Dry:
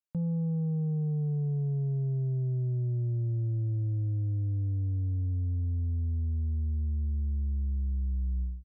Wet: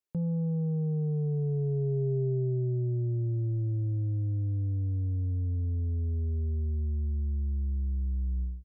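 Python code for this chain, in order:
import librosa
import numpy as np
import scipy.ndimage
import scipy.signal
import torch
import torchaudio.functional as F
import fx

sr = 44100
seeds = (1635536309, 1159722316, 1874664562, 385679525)

y = fx.peak_eq(x, sr, hz=400.0, db=14.0, octaves=0.31)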